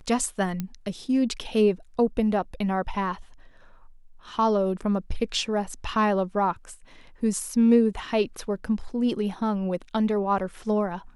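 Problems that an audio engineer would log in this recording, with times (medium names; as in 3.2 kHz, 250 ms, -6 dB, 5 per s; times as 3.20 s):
0.60 s: pop -16 dBFS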